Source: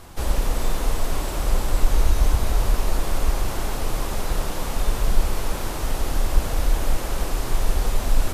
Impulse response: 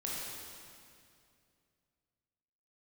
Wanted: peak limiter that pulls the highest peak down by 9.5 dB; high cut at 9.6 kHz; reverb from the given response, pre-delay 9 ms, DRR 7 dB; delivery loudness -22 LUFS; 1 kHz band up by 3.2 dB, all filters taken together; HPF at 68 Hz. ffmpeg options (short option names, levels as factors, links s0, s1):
-filter_complex "[0:a]highpass=68,lowpass=9600,equalizer=f=1000:t=o:g=4,alimiter=limit=0.0841:level=0:latency=1,asplit=2[s0][s1];[1:a]atrim=start_sample=2205,adelay=9[s2];[s1][s2]afir=irnorm=-1:irlink=0,volume=0.316[s3];[s0][s3]amix=inputs=2:normalize=0,volume=2.66"